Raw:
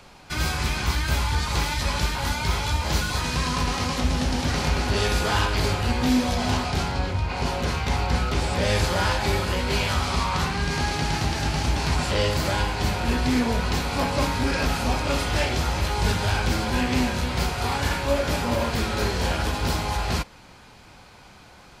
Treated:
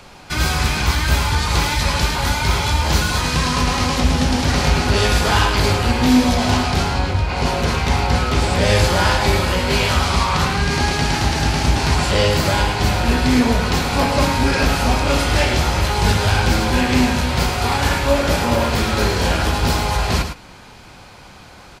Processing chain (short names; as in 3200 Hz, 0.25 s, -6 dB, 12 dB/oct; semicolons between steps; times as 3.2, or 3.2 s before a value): echo 0.107 s -8.5 dB; gain +6.5 dB